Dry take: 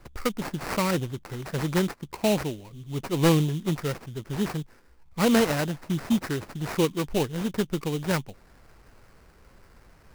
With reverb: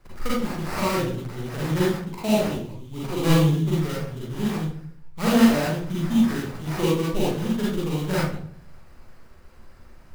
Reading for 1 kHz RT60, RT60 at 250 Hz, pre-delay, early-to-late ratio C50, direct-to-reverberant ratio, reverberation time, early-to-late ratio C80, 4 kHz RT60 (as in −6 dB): 0.50 s, 0.65 s, 38 ms, −1.5 dB, −7.5 dB, 0.55 s, 3.5 dB, 0.40 s